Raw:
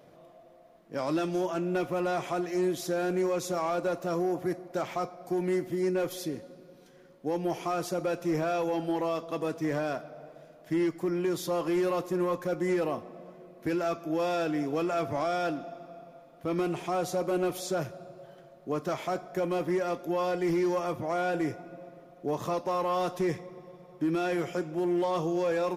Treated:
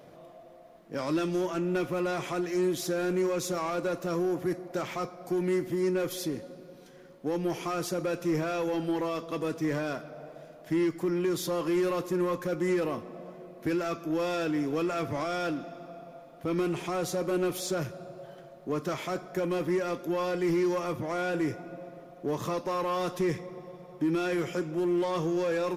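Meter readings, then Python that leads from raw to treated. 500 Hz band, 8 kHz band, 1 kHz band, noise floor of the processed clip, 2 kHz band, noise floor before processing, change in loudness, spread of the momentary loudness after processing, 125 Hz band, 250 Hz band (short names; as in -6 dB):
-0.5 dB, +2.5 dB, -2.5 dB, -51 dBFS, +1.0 dB, -55 dBFS, 0.0 dB, 14 LU, +1.5 dB, +1.0 dB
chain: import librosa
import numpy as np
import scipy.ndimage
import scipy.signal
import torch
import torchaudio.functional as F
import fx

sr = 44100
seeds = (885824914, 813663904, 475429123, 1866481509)

p1 = 10.0 ** (-36.0 / 20.0) * np.tanh(x / 10.0 ** (-36.0 / 20.0))
p2 = x + (p1 * 10.0 ** (-5.0 / 20.0))
y = fx.dynamic_eq(p2, sr, hz=720.0, q=2.1, threshold_db=-44.0, ratio=4.0, max_db=-7)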